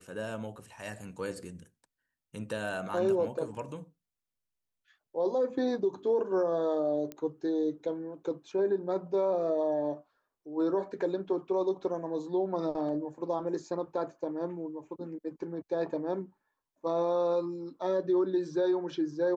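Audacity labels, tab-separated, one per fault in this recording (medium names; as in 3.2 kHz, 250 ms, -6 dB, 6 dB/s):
7.120000	7.120000	pop -24 dBFS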